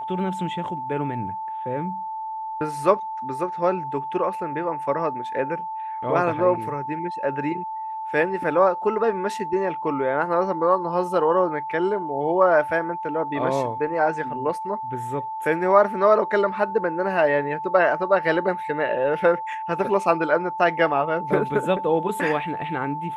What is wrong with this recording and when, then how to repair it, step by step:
whistle 880 Hz −28 dBFS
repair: notch filter 880 Hz, Q 30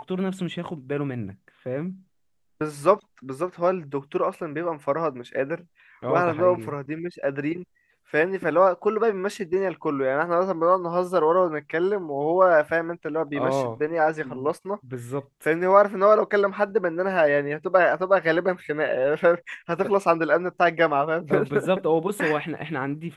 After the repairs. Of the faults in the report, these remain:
none of them is left

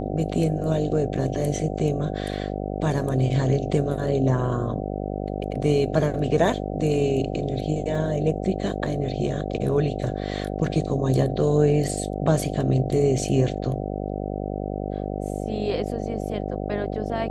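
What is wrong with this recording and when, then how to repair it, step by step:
mains buzz 50 Hz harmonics 15 −29 dBFS
0:07.95: drop-out 2.8 ms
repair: hum removal 50 Hz, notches 15
repair the gap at 0:07.95, 2.8 ms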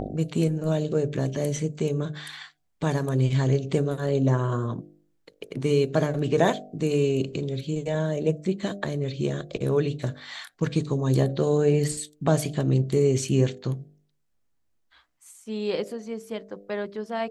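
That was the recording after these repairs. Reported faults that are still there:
none of them is left

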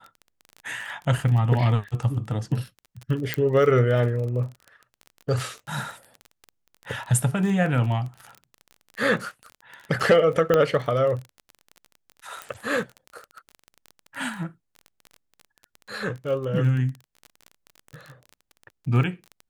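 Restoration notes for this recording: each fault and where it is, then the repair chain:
surface crackle 24 per second −31 dBFS
0:03.34: click −9 dBFS
0:10.54: click −8 dBFS
0:12.42: click −18 dBFS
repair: click removal

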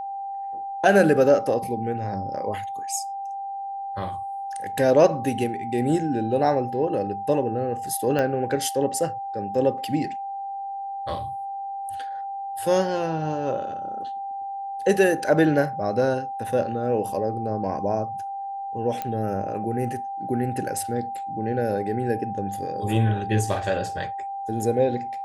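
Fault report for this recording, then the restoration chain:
whistle 790 Hz −29 dBFS
0:08.19: click −13 dBFS
0:19.02: click −15 dBFS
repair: click removal
notch filter 790 Hz, Q 30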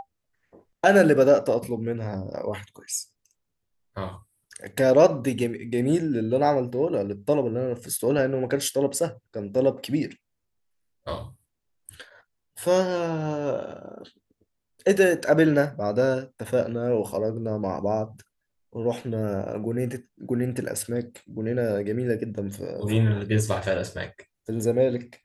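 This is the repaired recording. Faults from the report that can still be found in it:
0:08.19: click

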